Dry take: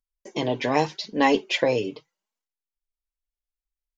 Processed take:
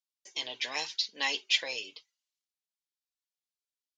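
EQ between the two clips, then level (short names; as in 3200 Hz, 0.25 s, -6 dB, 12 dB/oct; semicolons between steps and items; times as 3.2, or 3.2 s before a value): band-pass 3800 Hz, Q 1.1; high shelf 3500 Hz +11.5 dB; -3.5 dB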